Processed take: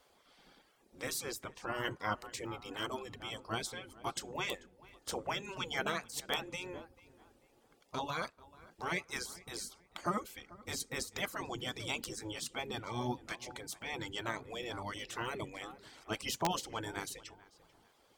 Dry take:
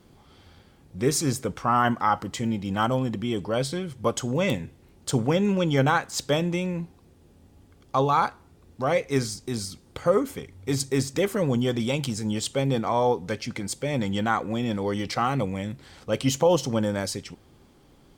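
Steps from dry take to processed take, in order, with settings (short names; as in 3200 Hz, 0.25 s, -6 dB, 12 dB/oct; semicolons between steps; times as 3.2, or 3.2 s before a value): reverb removal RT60 0.62 s; on a send: darkening echo 0.44 s, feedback 35%, low-pass 2200 Hz, level -20 dB; on the sum: spectral gate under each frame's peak -10 dB weak; wrapped overs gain 16.5 dB; gain -4.5 dB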